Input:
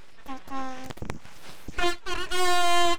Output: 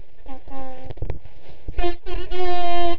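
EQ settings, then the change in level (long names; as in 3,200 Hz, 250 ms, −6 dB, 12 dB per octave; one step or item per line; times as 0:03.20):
Gaussian smoothing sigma 2.5 samples
low-shelf EQ 290 Hz +11 dB
phaser with its sweep stopped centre 520 Hz, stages 4
+2.0 dB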